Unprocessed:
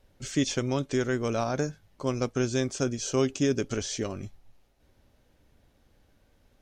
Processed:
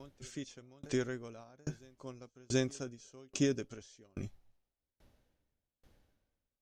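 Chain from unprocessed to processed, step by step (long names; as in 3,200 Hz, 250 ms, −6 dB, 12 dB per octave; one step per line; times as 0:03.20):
on a send: backwards echo 731 ms −23.5 dB
on the sum: tremolo with a ramp in dB decaying 1.2 Hz, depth 36 dB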